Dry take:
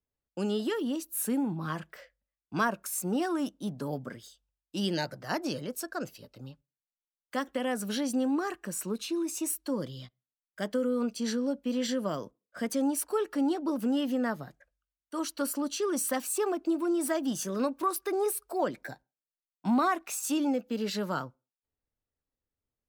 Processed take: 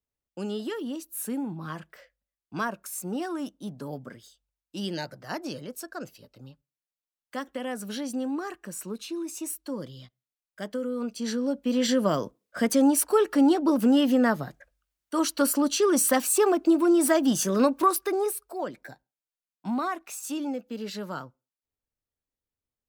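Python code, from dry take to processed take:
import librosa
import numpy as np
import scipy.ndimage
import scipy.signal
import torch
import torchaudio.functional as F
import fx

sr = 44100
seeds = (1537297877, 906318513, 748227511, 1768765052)

y = fx.gain(x, sr, db=fx.line((10.95, -2.0), (12.02, 8.0), (17.84, 8.0), (18.55, -3.0)))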